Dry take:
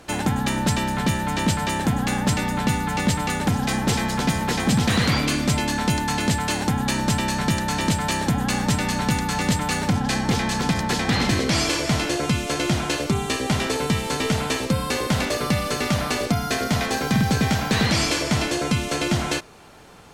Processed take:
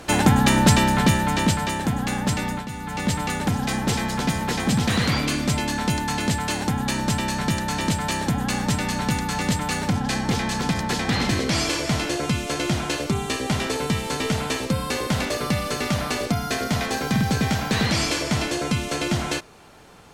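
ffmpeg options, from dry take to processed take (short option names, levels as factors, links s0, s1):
-af "volume=7.5,afade=t=out:st=0.72:d=1.05:silence=0.398107,afade=t=out:st=2.52:d=0.15:silence=0.281838,afade=t=in:st=2.67:d=0.48:silence=0.266073"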